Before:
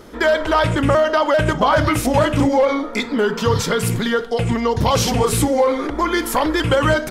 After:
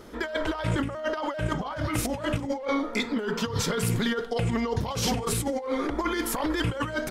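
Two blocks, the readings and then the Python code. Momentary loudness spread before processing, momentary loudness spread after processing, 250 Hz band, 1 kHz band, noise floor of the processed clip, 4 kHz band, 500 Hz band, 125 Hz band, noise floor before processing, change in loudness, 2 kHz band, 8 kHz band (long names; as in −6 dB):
4 LU, 4 LU, −8.5 dB, −13.0 dB, −36 dBFS, −8.5 dB, −13.0 dB, −9.0 dB, −30 dBFS, −10.5 dB, −10.5 dB, −7.0 dB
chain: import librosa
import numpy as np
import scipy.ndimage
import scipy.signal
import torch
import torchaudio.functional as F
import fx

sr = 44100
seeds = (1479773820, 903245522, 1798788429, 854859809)

y = fx.over_compress(x, sr, threshold_db=-19.0, ratio=-0.5)
y = F.gain(torch.from_numpy(y), -8.0).numpy()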